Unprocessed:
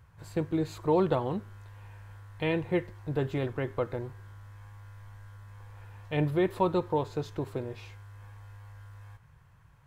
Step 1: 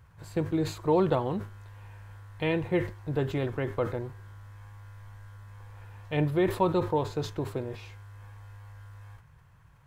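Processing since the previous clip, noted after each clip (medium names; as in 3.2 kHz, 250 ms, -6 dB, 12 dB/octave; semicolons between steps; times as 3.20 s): decay stretcher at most 130 dB/s; trim +1 dB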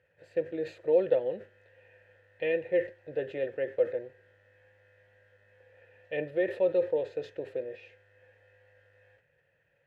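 vowel filter e; trim +7.5 dB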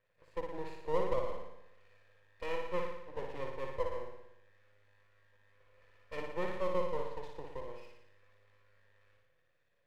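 half-wave rectifier; on a send: flutter echo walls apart 10 m, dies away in 0.84 s; on the sum: trim -5.5 dB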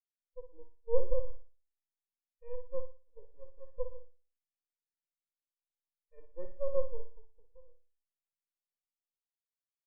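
spectral contrast expander 2.5:1; trim +6 dB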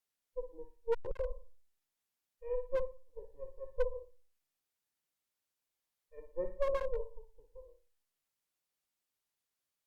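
one-sided clip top -23 dBFS; trim +7.5 dB; Opus 256 kbps 48 kHz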